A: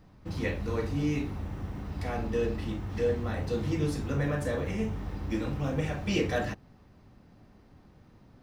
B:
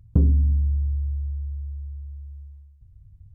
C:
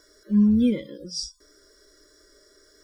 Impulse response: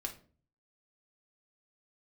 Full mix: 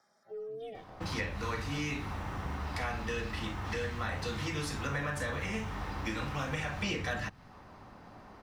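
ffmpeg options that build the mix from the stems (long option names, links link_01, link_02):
-filter_complex "[0:a]equalizer=frequency=6600:width_type=o:width=2.7:gain=5.5,adelay=750,volume=-0.5dB[link_01];[1:a]adelay=2300,volume=-17.5dB[link_02];[2:a]aeval=exprs='val(0)*sin(2*PI*220*n/s)':channel_layout=same,highpass=110,volume=-20dB,asplit=2[link_03][link_04];[link_04]volume=-6dB[link_05];[3:a]atrim=start_sample=2205[link_06];[link_05][link_06]afir=irnorm=-1:irlink=0[link_07];[link_01][link_02][link_03][link_07]amix=inputs=4:normalize=0,equalizer=frequency=1000:width_type=o:width=2.1:gain=14.5,acrossover=split=210|1500[link_08][link_09][link_10];[link_08]acompressor=threshold=-37dB:ratio=4[link_11];[link_09]acompressor=threshold=-43dB:ratio=4[link_12];[link_10]acompressor=threshold=-37dB:ratio=4[link_13];[link_11][link_12][link_13]amix=inputs=3:normalize=0"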